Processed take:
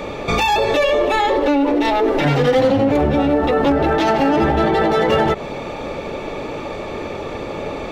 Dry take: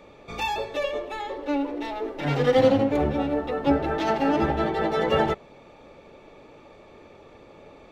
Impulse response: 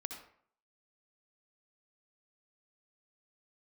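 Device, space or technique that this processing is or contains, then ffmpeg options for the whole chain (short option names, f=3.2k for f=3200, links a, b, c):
loud club master: -af "acompressor=threshold=-25dB:ratio=3,asoftclip=type=hard:threshold=-20.5dB,alimiter=level_in=30dB:limit=-1dB:release=50:level=0:latency=1,volume=-8dB"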